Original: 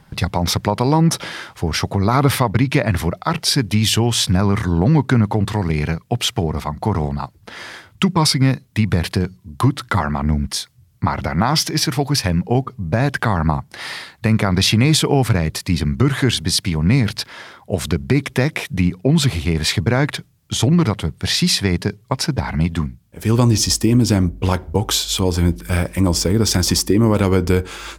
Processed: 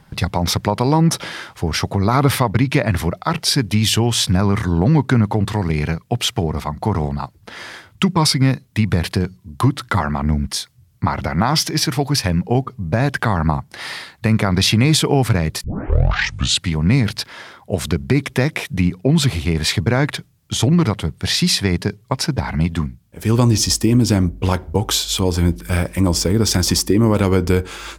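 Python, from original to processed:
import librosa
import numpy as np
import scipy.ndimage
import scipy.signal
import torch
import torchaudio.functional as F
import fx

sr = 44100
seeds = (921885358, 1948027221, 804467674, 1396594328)

y = fx.edit(x, sr, fx.tape_start(start_s=15.64, length_s=1.11), tone=tone)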